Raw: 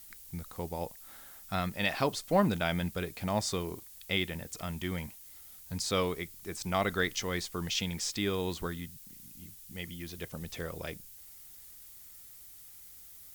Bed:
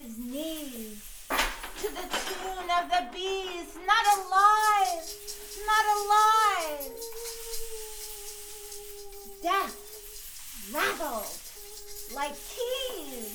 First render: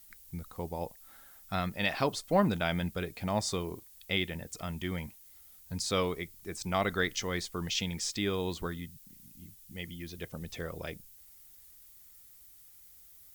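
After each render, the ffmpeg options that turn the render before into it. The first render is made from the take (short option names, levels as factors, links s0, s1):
-af "afftdn=nr=6:nf=-52"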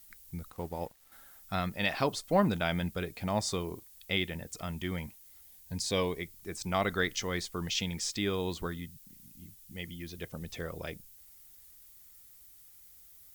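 -filter_complex "[0:a]asettb=1/sr,asplit=3[s0][s1][s2];[s0]atrim=end=0.504[s3];[s1]atrim=start=0.5:end=1.12,asetpts=PTS-STARTPTS,afade=t=in:d=0.004:c=qsin,afade=t=out:st=0.616:d=0.004:c=qsin,aeval=exprs='sgn(val(0))*max(abs(val(0))-0.00168,0)':c=same[s4];[s2]atrim=start=1.116[s5];[s3][s4]acrossfade=d=0.004:c1=hsin:c2=qsin[s6];[s6][s5]acrossfade=d=0.004:c1=qsin:c2=hsin,asettb=1/sr,asplit=3[s7][s8][s9];[s7]atrim=end=5.424[s10];[s8]atrim=start=5.42:end=6.2,asetpts=PTS-STARTPTS,afade=t=in:d=0.004:c=qsin,afade=t=out:st=0.776:d=0.004:c=qsin,asuperstop=centerf=1300:order=4:qfactor=4.1[s11];[s9]atrim=start=6.196[s12];[s10][s11]acrossfade=d=0.004:c1=hsin:c2=qsin[s13];[s13][s12]acrossfade=d=0.004:c1=qsin:c2=hsin"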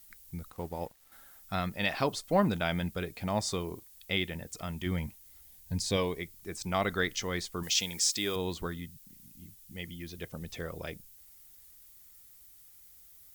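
-filter_complex "[0:a]asettb=1/sr,asplit=3[s0][s1][s2];[s0]atrim=end=4.864[s3];[s1]atrim=start=4.86:end=5.97,asetpts=PTS-STARTPTS,afade=t=in:d=0.004:c=qsin,afade=t=out:st=1.106:d=0.004:c=qsin,lowshelf=f=200:g=7[s4];[s2]atrim=start=5.966[s5];[s3][s4]acrossfade=d=0.004:c1=hsin:c2=qsin[s6];[s6][s5]acrossfade=d=0.004:c1=qsin:c2=hsin,asettb=1/sr,asplit=3[s7][s8][s9];[s7]atrim=end=7.634[s10];[s8]atrim=start=7.63:end=8.36,asetpts=PTS-STARTPTS,afade=t=in:d=0.004:c=qsin,afade=t=out:st=0.726:d=0.004:c=qsin,bass=f=250:g=-8,treble=f=4000:g=9[s11];[s9]atrim=start=8.356[s12];[s10][s11]acrossfade=d=0.004:c1=hsin:c2=qsin[s13];[s13][s12]acrossfade=d=0.004:c1=qsin:c2=hsin"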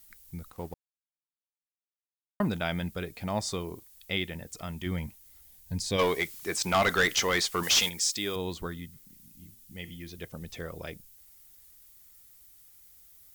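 -filter_complex "[0:a]asplit=3[s0][s1][s2];[s0]afade=t=out:st=5.98:d=0.02[s3];[s1]asplit=2[s4][s5];[s5]highpass=f=720:p=1,volume=10,asoftclip=type=tanh:threshold=0.188[s6];[s4][s6]amix=inputs=2:normalize=0,lowpass=f=7500:p=1,volume=0.501,afade=t=in:st=5.98:d=0.02,afade=t=out:st=7.88:d=0.02[s7];[s2]afade=t=in:st=7.88:d=0.02[s8];[s3][s7][s8]amix=inputs=3:normalize=0,asplit=3[s9][s10][s11];[s9]afade=t=out:st=8.92:d=0.02[s12];[s10]bandreject=f=116.6:t=h:w=4,bandreject=f=233.2:t=h:w=4,bandreject=f=349.8:t=h:w=4,bandreject=f=466.4:t=h:w=4,bandreject=f=583:t=h:w=4,bandreject=f=699.6:t=h:w=4,bandreject=f=816.2:t=h:w=4,bandreject=f=932.8:t=h:w=4,bandreject=f=1049.4:t=h:w=4,bandreject=f=1166:t=h:w=4,bandreject=f=1282.6:t=h:w=4,bandreject=f=1399.2:t=h:w=4,bandreject=f=1515.8:t=h:w=4,bandreject=f=1632.4:t=h:w=4,bandreject=f=1749:t=h:w=4,bandreject=f=1865.6:t=h:w=4,bandreject=f=1982.2:t=h:w=4,bandreject=f=2098.8:t=h:w=4,bandreject=f=2215.4:t=h:w=4,bandreject=f=2332:t=h:w=4,bandreject=f=2448.6:t=h:w=4,bandreject=f=2565.2:t=h:w=4,bandreject=f=2681.8:t=h:w=4,bandreject=f=2798.4:t=h:w=4,bandreject=f=2915:t=h:w=4,bandreject=f=3031.6:t=h:w=4,bandreject=f=3148.2:t=h:w=4,bandreject=f=3264.8:t=h:w=4,bandreject=f=3381.4:t=h:w=4,afade=t=in:st=8.92:d=0.02,afade=t=out:st=10.09:d=0.02[s13];[s11]afade=t=in:st=10.09:d=0.02[s14];[s12][s13][s14]amix=inputs=3:normalize=0,asplit=3[s15][s16][s17];[s15]atrim=end=0.74,asetpts=PTS-STARTPTS,afade=t=out:st=0.736:d=0.004:c=hsin[s18];[s16]atrim=start=0.74:end=2.4,asetpts=PTS-STARTPTS,volume=0[s19];[s17]atrim=start=2.4,asetpts=PTS-STARTPTS,afade=t=in:d=0.004:c=hsin[s20];[s18][s19][s20]concat=n=3:v=0:a=1"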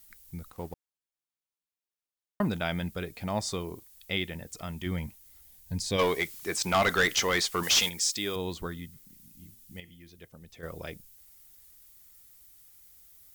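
-filter_complex "[0:a]asplit=3[s0][s1][s2];[s0]atrim=end=9.802[s3];[s1]atrim=start=9.798:end=10.632,asetpts=PTS-STARTPTS,volume=0.335[s4];[s2]atrim=start=10.628[s5];[s3][s4]acrossfade=d=0.004:c1=hsin:c2=hsin[s6];[s6][s5]acrossfade=d=0.004:c1=hsin:c2=hsin"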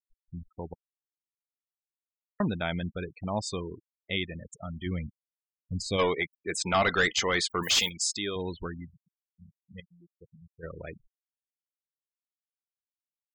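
-af "afftfilt=real='re*gte(hypot(re,im),0.02)':imag='im*gte(hypot(re,im),0.02)':win_size=1024:overlap=0.75,bandreject=f=5700:w=8.6"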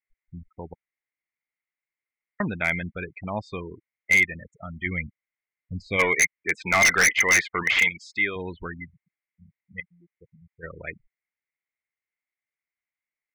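-af "lowpass=f=2100:t=q:w=11,aeval=exprs='0.266*(abs(mod(val(0)/0.266+3,4)-2)-1)':c=same"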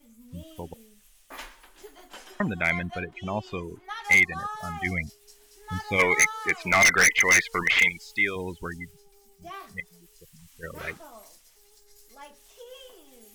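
-filter_complex "[1:a]volume=0.2[s0];[0:a][s0]amix=inputs=2:normalize=0"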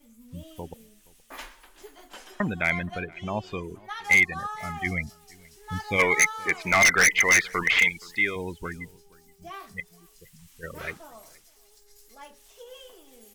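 -filter_complex "[0:a]asplit=2[s0][s1];[s1]adelay=472.3,volume=0.0631,highshelf=f=4000:g=-10.6[s2];[s0][s2]amix=inputs=2:normalize=0"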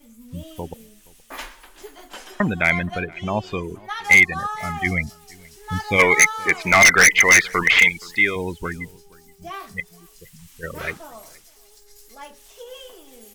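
-af "volume=2.11"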